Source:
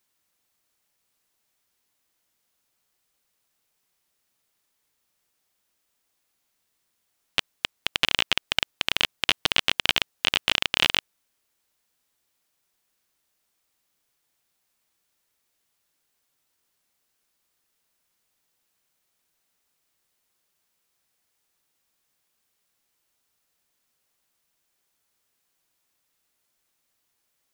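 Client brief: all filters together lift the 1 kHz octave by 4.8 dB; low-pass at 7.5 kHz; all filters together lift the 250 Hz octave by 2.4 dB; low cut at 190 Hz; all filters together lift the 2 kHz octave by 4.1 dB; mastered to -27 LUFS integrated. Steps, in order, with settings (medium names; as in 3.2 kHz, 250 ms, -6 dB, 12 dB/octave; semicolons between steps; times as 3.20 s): high-pass 190 Hz; low-pass 7.5 kHz; peaking EQ 250 Hz +4.5 dB; peaking EQ 1 kHz +4.5 dB; peaking EQ 2 kHz +4.5 dB; trim -5.5 dB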